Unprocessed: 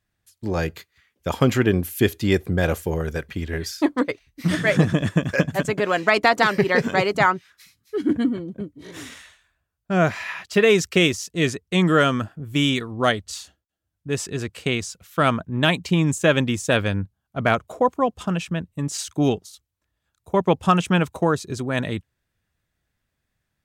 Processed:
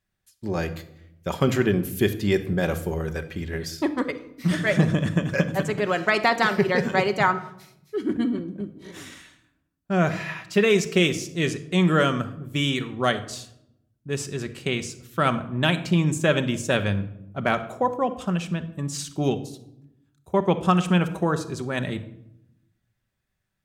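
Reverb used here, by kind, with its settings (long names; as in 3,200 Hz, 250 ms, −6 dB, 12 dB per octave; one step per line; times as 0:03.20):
rectangular room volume 2,100 cubic metres, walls furnished, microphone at 1.1 metres
level −3.5 dB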